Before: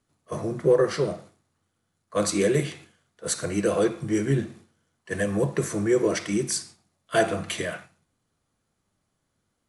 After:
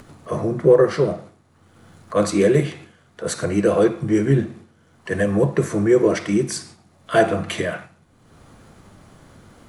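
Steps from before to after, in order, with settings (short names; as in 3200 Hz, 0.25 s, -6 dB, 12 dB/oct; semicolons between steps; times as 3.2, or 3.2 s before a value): high shelf 2900 Hz -10 dB; in parallel at +1 dB: upward compressor, threshold -25 dBFS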